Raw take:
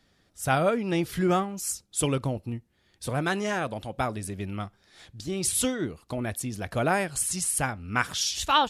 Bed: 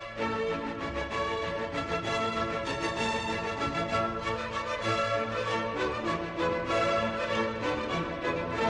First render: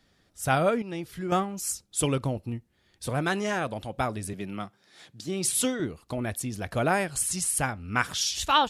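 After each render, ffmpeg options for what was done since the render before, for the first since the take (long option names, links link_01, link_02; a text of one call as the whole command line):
ffmpeg -i in.wav -filter_complex "[0:a]asettb=1/sr,asplit=3[link_01][link_02][link_03];[link_01]atrim=end=4.334[link_04];[link_02]atrim=start=4.33:end=5.8,asetpts=PTS-STARTPTS,afade=type=in:duration=0.004:curve=qsin,afade=type=out:start_time=1.466:duration=0.004:curve=qsin,highpass=frequency=130:width=0.5412,highpass=frequency=130:width=1.3066[link_05];[link_03]atrim=start=5.796[link_06];[link_04][link_05]acrossfade=duration=0.004:curve1=hsin:curve2=qsin[link_07];[link_07][link_06]acrossfade=duration=0.004:curve1=qsin:curve2=hsin,asplit=3[link_08][link_09][link_10];[link_08]atrim=end=0.822[link_11];[link_09]atrim=start=0.818:end=1.322,asetpts=PTS-STARTPTS,volume=-8.5dB[link_12];[link_10]atrim=start=1.318[link_13];[link_11][link_12]acrossfade=duration=0.004:curve1=hsin:curve2=hsin[link_14];[link_14][link_13]acrossfade=duration=0.004:curve1=hsin:curve2=hsin" out.wav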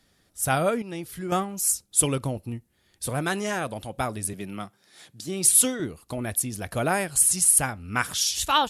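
ffmpeg -i in.wav -af "equalizer=frequency=11000:width_type=o:width=1:gain=11" out.wav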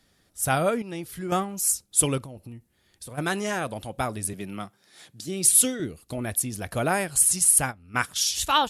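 ffmpeg -i in.wav -filter_complex "[0:a]asplit=3[link_01][link_02][link_03];[link_01]afade=type=out:start_time=2.22:duration=0.02[link_04];[link_02]acompressor=threshold=-37dB:ratio=8:attack=3.2:release=140:knee=1:detection=peak,afade=type=in:start_time=2.22:duration=0.02,afade=type=out:start_time=3.17:duration=0.02[link_05];[link_03]afade=type=in:start_time=3.17:duration=0.02[link_06];[link_04][link_05][link_06]amix=inputs=3:normalize=0,asettb=1/sr,asplit=3[link_07][link_08][link_09];[link_07]atrim=end=5.254[link_10];[link_08]atrim=start=5.25:end=6.15,asetpts=PTS-STARTPTS,afade=type=in:duration=0.004:curve=qsin,afade=type=out:start_time=0.896:duration=0.004:curve=qsin,equalizer=frequency=990:width_type=o:width=0.79:gain=-9[link_11];[link_09]atrim=start=6.146[link_12];[link_10][link_11]acrossfade=duration=0.004:curve1=hsin:curve2=qsin[link_13];[link_13][link_12]acrossfade=duration=0.004:curve1=qsin:curve2=hsin,asettb=1/sr,asplit=3[link_14][link_15][link_16];[link_14]atrim=end=7.254[link_17];[link_15]atrim=start=7.25:end=8.28,asetpts=PTS-STARTPTS,afade=type=in:duration=0.004:curve=qsin,afade=type=out:start_time=1.026:duration=0.004:curve=qsin,agate=range=-12dB:threshold=-31dB:ratio=16:release=100:detection=peak[link_18];[link_16]atrim=start=8.276[link_19];[link_17][link_18]acrossfade=duration=0.004:curve1=hsin:curve2=qsin[link_20];[link_20][link_19]acrossfade=duration=0.004:curve1=qsin:curve2=hsin" out.wav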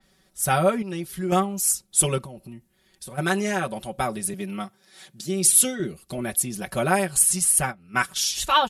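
ffmpeg -i in.wav -af "aecho=1:1:5.3:0.88,adynamicequalizer=threshold=0.02:dfrequency=3700:dqfactor=0.7:tfrequency=3700:tqfactor=0.7:attack=5:release=100:ratio=0.375:range=3:mode=cutabove:tftype=highshelf" out.wav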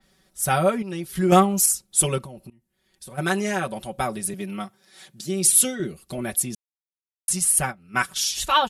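ffmpeg -i in.wav -filter_complex "[0:a]asettb=1/sr,asplit=3[link_01][link_02][link_03];[link_01]atrim=end=1.154[link_04];[link_02]atrim=start=1.15:end=1.66,asetpts=PTS-STARTPTS,afade=type=in:duration=0.004:curve=qsin,afade=type=out:start_time=0.506:duration=0.004:curve=qsin,acontrast=71[link_05];[link_03]atrim=start=1.656[link_06];[link_04][link_05]acrossfade=duration=0.004:curve1=hsin:curve2=qsin[link_07];[link_07][link_06]acrossfade=duration=0.004:curve1=qsin:curve2=hsin,asplit=4[link_08][link_09][link_10][link_11];[link_08]atrim=end=2.5,asetpts=PTS-STARTPTS,afade=type=out:start_time=2.496:duration=0.004:curve=hsin:silence=0.0891251[link_12];[link_09]atrim=start=2.5:end=6.55,asetpts=PTS-STARTPTS,afade=type=in:duration=0.76:silence=0.0891251,afade=type=out:start_time=4.046:duration=0.004:curve=hsin[link_13];[link_10]atrim=start=6.55:end=7.28,asetpts=PTS-STARTPTS,volume=0[link_14];[link_11]atrim=start=7.28,asetpts=PTS-STARTPTS,afade=type=in:duration=0.004:curve=hsin[link_15];[link_12][link_13][link_14][link_15]concat=n=4:v=0:a=1" out.wav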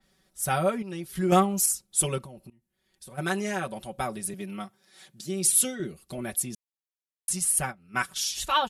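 ffmpeg -i in.wav -af "volume=-5dB" out.wav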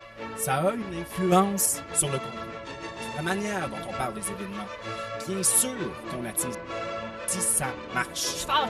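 ffmpeg -i in.wav -i bed.wav -filter_complex "[1:a]volume=-6dB[link_01];[0:a][link_01]amix=inputs=2:normalize=0" out.wav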